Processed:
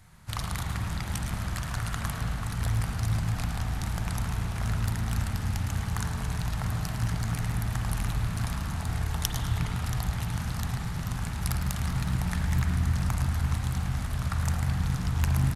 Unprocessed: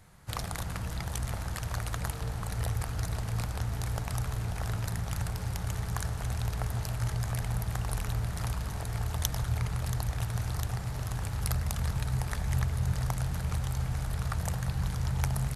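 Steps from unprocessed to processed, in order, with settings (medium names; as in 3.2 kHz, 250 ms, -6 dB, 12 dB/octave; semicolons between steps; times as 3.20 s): peaking EQ 480 Hz -8.5 dB 1.1 oct; on a send: frequency-shifting echo 108 ms, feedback 37%, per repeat +52 Hz, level -10 dB; on the sum: spring tank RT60 2.9 s, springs 37/45 ms, chirp 25 ms, DRR 2 dB; loudspeaker Doppler distortion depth 0.42 ms; trim +2 dB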